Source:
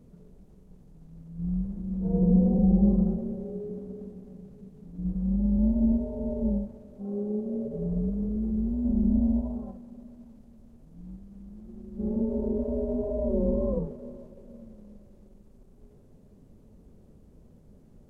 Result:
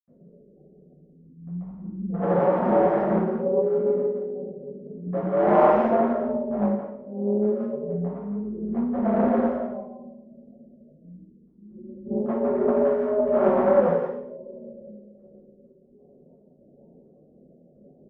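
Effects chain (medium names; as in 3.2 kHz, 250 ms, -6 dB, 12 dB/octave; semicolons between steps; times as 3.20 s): de-hum 109.1 Hz, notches 6; spectral gate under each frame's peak -25 dB strong; 3.34–5.61 s: peaking EQ 930 Hz -> 340 Hz +11.5 dB 2.5 oct; wavefolder -21.5 dBFS; random-step tremolo 4.3 Hz; distance through air 280 m; speakerphone echo 170 ms, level -7 dB; reverberation, pre-delay 76 ms; loudspeaker Doppler distortion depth 0.21 ms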